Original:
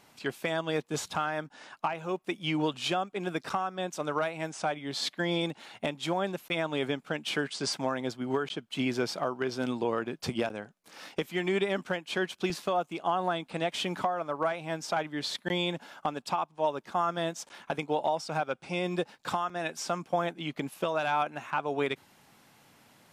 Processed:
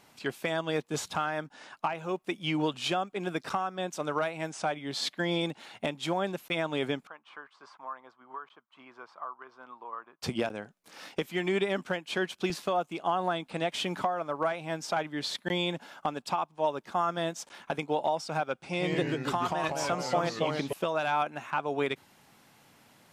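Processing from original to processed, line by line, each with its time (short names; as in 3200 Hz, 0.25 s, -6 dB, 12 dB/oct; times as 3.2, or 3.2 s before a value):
7.07–10.22 band-pass 1100 Hz, Q 5.5
18.63–20.73 echoes that change speed 95 ms, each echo -2 st, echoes 3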